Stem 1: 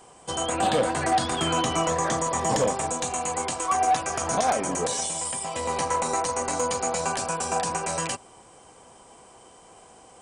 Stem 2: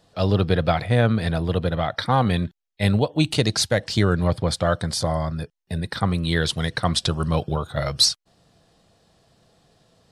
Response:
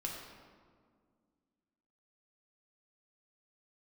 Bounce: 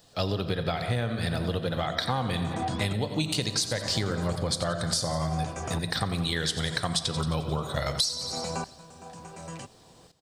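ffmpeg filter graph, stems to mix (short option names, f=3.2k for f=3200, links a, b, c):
-filter_complex "[0:a]equalizer=f=120:w=0.42:g=12,aeval=exprs='val(0)*pow(10,-21*if(lt(mod(-0.7*n/s,1),2*abs(-0.7)/1000),1-mod(-0.7*n/s,1)/(2*abs(-0.7)/1000),(mod(-0.7*n/s,1)-2*abs(-0.7)/1000)/(1-2*abs(-0.7)/1000))/20)':c=same,adelay=1500,volume=-7dB[a];[1:a]aemphasis=mode=production:type=75kf,volume=-4.5dB,asplit=3[b][c][d];[c]volume=-5.5dB[e];[d]volume=-11dB[f];[2:a]atrim=start_sample=2205[g];[e][g]afir=irnorm=-1:irlink=0[h];[f]aecho=0:1:88|176|264|352|440|528|616|704|792:1|0.58|0.336|0.195|0.113|0.0656|0.0381|0.0221|0.0128[i];[a][b][h][i]amix=inputs=4:normalize=0,equalizer=f=11k:w=2:g=-10.5,acompressor=threshold=-24dB:ratio=12"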